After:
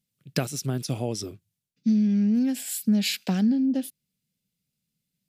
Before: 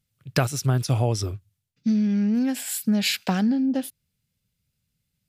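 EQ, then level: resonant low shelf 130 Hz -11.5 dB, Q 1.5; bell 1100 Hz -8.5 dB 1.6 oct; -2.0 dB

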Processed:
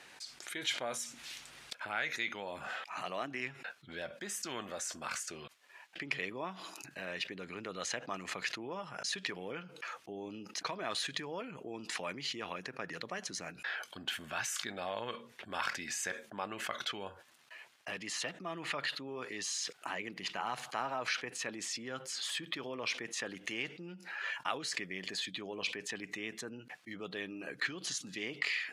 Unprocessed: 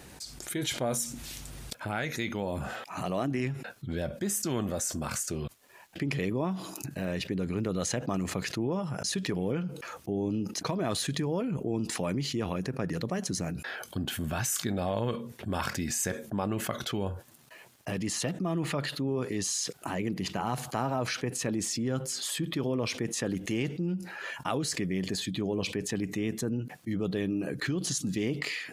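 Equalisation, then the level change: band-pass 2200 Hz, Q 0.77; +1.0 dB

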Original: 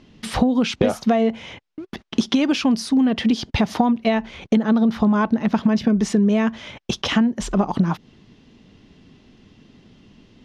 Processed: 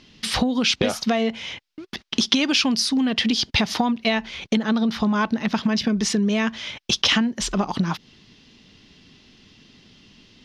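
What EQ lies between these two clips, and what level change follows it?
EQ curve 680 Hz 0 dB, 5000 Hz +14 dB, 7500 Hz +8 dB; -4.0 dB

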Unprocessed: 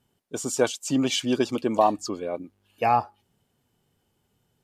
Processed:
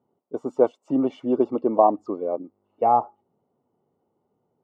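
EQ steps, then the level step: polynomial smoothing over 65 samples; HPF 400 Hz 12 dB/oct; tilt -3.5 dB/oct; +2.5 dB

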